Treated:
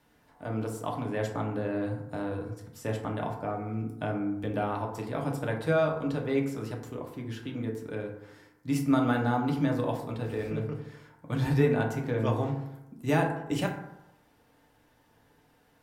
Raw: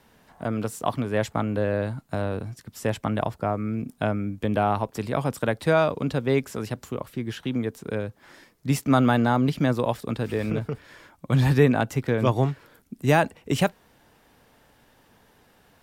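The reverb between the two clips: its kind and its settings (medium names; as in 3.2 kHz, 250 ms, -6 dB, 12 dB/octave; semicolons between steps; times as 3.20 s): FDN reverb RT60 0.89 s, low-frequency decay 1×, high-frequency decay 0.4×, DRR 0 dB; trim -9.5 dB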